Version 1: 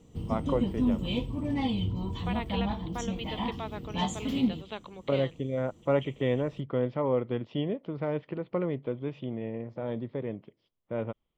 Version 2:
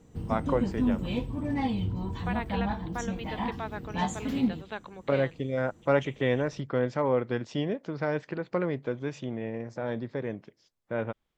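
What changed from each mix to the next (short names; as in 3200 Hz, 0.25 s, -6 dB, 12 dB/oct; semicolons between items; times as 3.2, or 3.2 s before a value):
first voice: remove air absorption 390 m; master: add thirty-one-band EQ 800 Hz +3 dB, 1600 Hz +11 dB, 3150 Hz -8 dB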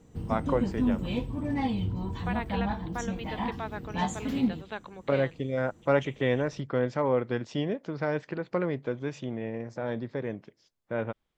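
none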